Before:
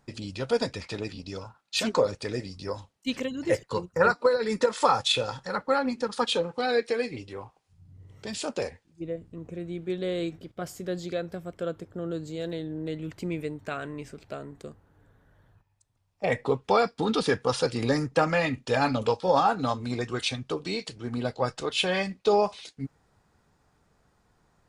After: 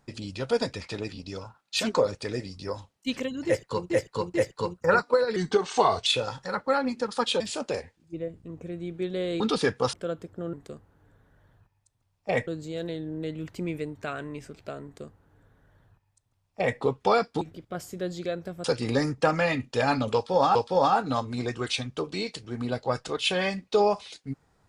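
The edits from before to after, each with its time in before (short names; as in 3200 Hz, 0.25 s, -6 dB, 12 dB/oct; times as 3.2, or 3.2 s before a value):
3.46–3.9 loop, 3 plays
4.48–5.07 speed 84%
6.41–8.28 cut
10.28–11.51 swap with 17.05–17.58
14.48–16.42 copy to 12.11
19.08–19.49 loop, 2 plays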